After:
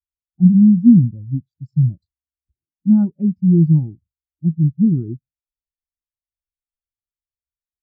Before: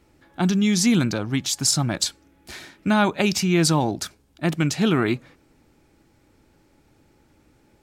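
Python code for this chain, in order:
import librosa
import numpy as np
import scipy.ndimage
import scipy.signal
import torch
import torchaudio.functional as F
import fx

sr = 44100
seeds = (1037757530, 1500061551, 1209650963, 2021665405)

y = fx.wiener(x, sr, points=25)
y = fx.riaa(y, sr, side='playback')
y = fx.spectral_expand(y, sr, expansion=2.5)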